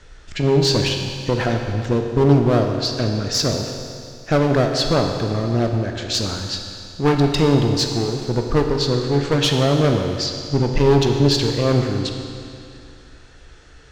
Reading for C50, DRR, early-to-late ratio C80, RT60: 4.5 dB, 3.0 dB, 5.5 dB, 2.5 s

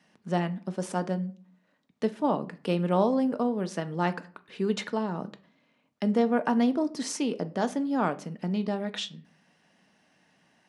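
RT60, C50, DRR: 0.45 s, 19.0 dB, 9.0 dB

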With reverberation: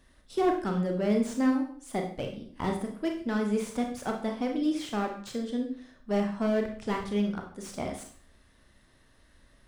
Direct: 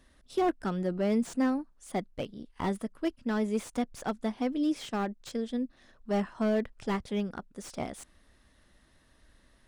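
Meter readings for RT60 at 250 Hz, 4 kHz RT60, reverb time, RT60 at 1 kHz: 0.55 s, 0.45 s, 0.50 s, 0.50 s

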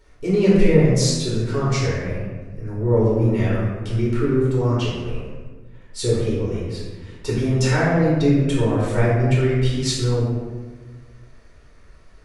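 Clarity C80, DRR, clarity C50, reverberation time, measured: 2.0 dB, -7.5 dB, -0.5 dB, 1.3 s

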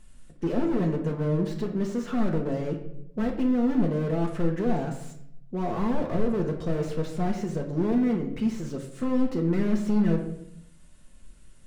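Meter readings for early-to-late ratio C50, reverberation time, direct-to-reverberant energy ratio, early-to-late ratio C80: 8.0 dB, 0.70 s, 1.5 dB, 11.0 dB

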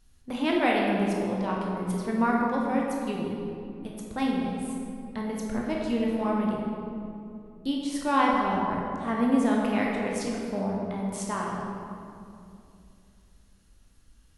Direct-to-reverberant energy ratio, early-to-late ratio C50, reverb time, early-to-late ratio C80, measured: -3.0 dB, -0.5 dB, 2.6 s, 1.0 dB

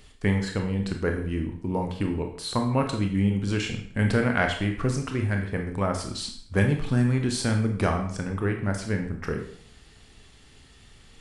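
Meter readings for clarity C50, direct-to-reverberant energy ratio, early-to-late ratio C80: 7.5 dB, 3.0 dB, 11.0 dB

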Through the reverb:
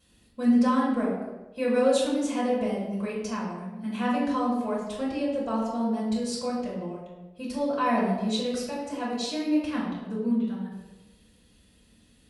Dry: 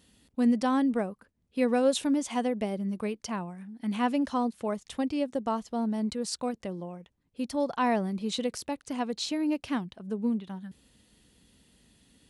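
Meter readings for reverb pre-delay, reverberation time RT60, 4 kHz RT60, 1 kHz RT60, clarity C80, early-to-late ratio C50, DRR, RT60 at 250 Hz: 3 ms, 1.2 s, 0.75 s, 1.0 s, 4.5 dB, 2.0 dB, -7.5 dB, 1.1 s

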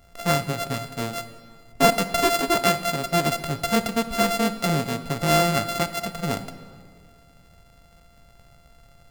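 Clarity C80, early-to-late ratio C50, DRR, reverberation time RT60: 13.5 dB, 12.5 dB, 11.0 dB, 2.0 s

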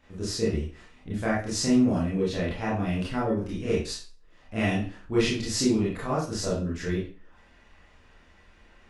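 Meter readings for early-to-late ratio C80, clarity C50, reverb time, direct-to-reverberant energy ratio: 9.0 dB, 3.5 dB, 0.40 s, -7.5 dB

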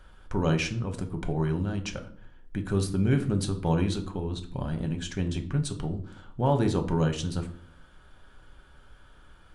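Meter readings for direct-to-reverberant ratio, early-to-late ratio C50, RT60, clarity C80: 5.0 dB, 13.0 dB, 0.60 s, 17.5 dB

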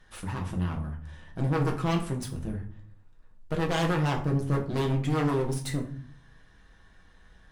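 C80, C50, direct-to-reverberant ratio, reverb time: 15.0 dB, 10.5 dB, 0.0 dB, 0.50 s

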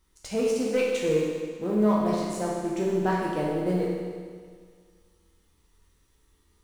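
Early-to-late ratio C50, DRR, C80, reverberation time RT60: -0.5 dB, -5.0 dB, 2.0 dB, 1.8 s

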